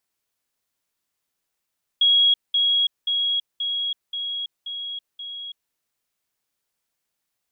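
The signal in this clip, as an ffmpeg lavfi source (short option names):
-f lavfi -i "aevalsrc='pow(10,(-13.5-3*floor(t/0.53))/20)*sin(2*PI*3310*t)*clip(min(mod(t,0.53),0.33-mod(t,0.53))/0.005,0,1)':d=3.71:s=44100"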